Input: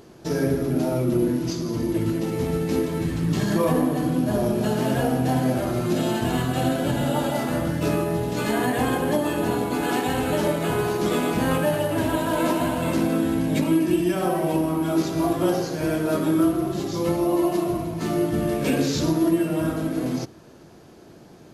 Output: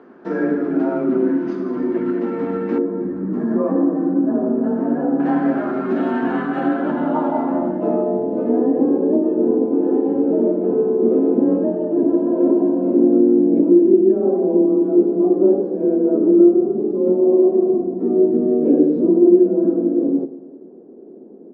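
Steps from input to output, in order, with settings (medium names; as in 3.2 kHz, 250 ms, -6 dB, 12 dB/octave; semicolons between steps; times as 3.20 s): feedback delay 100 ms, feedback 57%, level -16 dB; frequency shift +24 Hz; resonant low shelf 170 Hz -12 dB, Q 3; low-pass sweep 1.5 kHz -> 440 Hz, 6.67–8.80 s; 2.78–5.20 s: FFT filter 500 Hz 0 dB, 3.3 kHz -21 dB, 7.7 kHz -8 dB; trim -1 dB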